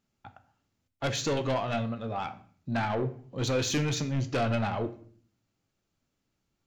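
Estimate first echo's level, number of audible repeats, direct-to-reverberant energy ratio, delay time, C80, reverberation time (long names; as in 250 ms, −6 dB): no echo audible, no echo audible, 8.5 dB, no echo audible, 18.5 dB, 0.50 s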